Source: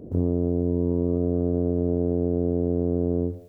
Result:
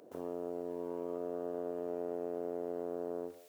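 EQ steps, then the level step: HPF 1200 Hz 12 dB/oct; +6.0 dB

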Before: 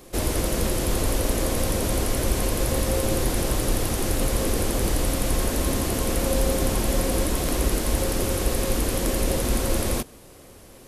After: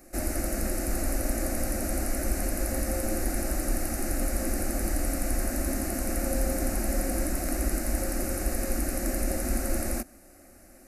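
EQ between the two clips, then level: fixed phaser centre 670 Hz, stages 8; -3.0 dB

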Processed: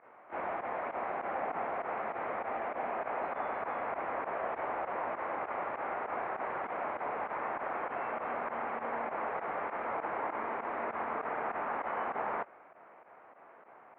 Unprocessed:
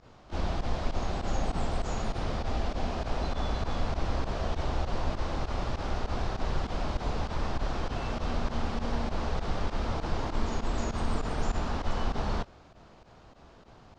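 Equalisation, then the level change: HPF 560 Hz 12 dB/oct; elliptic low-pass 2200 Hz, stop band 60 dB; +3.5 dB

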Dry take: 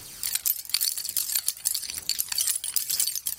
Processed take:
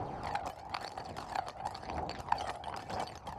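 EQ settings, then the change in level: HPF 52 Hz; synth low-pass 780 Hz, resonance Q 4.9; +10.0 dB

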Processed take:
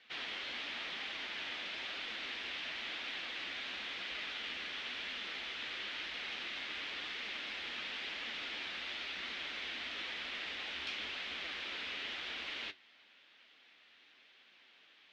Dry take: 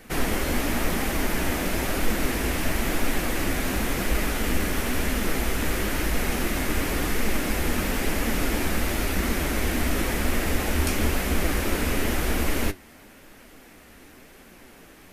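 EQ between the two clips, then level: band-pass 3500 Hz, Q 2.9; air absorption 210 m; +2.5 dB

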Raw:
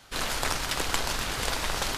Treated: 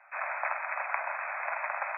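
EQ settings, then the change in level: steep high-pass 580 Hz 96 dB/oct; brick-wall FIR low-pass 2600 Hz; 0.0 dB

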